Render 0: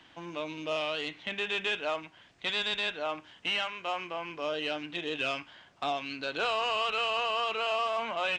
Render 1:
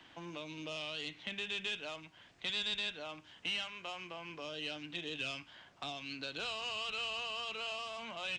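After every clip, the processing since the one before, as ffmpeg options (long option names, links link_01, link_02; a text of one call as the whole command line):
ffmpeg -i in.wav -filter_complex "[0:a]acrossover=split=220|3000[link_01][link_02][link_03];[link_02]acompressor=threshold=-45dB:ratio=4[link_04];[link_01][link_04][link_03]amix=inputs=3:normalize=0,volume=-1.5dB" out.wav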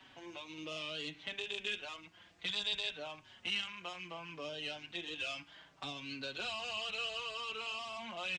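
ffmpeg -i in.wav -filter_complex "[0:a]asplit=2[link_01][link_02];[link_02]adelay=4.8,afreqshift=-0.66[link_03];[link_01][link_03]amix=inputs=2:normalize=1,volume=2.5dB" out.wav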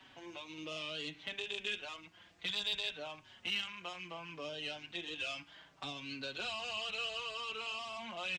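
ffmpeg -i in.wav -af "asoftclip=type=hard:threshold=-28dB" out.wav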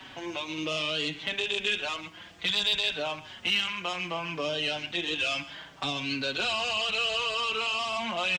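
ffmpeg -i in.wav -filter_complex "[0:a]asplit=2[link_01][link_02];[link_02]alimiter=level_in=11dB:limit=-24dB:level=0:latency=1:release=24,volume=-11dB,volume=3dB[link_03];[link_01][link_03]amix=inputs=2:normalize=0,aecho=1:1:129:0.141,volume=5.5dB" out.wav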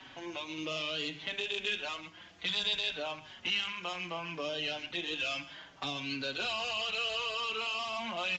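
ffmpeg -i in.wav -af "bandreject=frequency=50:width_type=h:width=6,bandreject=frequency=100:width_type=h:width=6,bandreject=frequency=150:width_type=h:width=6,bandreject=frequency=200:width_type=h:width=6,volume=-5.5dB" -ar 16000 -c:a aac -b:a 48k out.aac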